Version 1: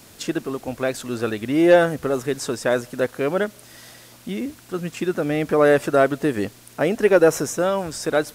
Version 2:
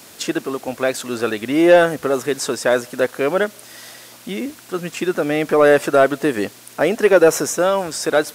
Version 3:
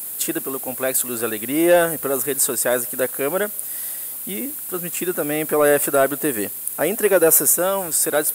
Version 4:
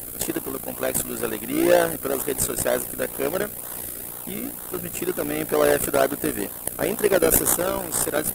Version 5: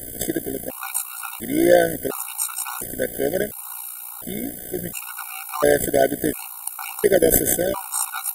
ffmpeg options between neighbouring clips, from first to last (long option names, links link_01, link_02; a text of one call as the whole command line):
ffmpeg -i in.wav -af "highpass=frequency=340:poles=1,acontrast=49" out.wav
ffmpeg -i in.wav -af "aexciter=amount=12.7:drive=3.6:freq=8300,volume=-4dB" out.wav
ffmpeg -i in.wav -filter_complex "[0:a]tremolo=f=60:d=0.71,asplit=2[link_01][link_02];[link_02]acrusher=samples=33:mix=1:aa=0.000001:lfo=1:lforange=33:lforate=2.1,volume=-7dB[link_03];[link_01][link_03]amix=inputs=2:normalize=0,volume=-2dB" out.wav
ffmpeg -i in.wav -af "afftfilt=real='re*gt(sin(2*PI*0.71*pts/sr)*(1-2*mod(floor(b*sr/1024/740),2)),0)':imag='im*gt(sin(2*PI*0.71*pts/sr)*(1-2*mod(floor(b*sr/1024/740),2)),0)':win_size=1024:overlap=0.75,volume=3dB" out.wav